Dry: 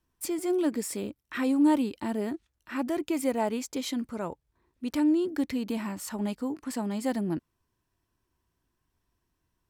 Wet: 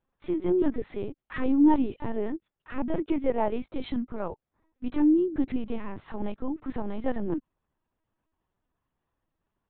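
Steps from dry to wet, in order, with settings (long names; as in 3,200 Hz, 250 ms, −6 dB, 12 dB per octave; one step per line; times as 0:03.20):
high-pass filter 200 Hz 24 dB per octave
high-shelf EQ 2,700 Hz −11.5 dB
linear-prediction vocoder at 8 kHz pitch kept
level +3 dB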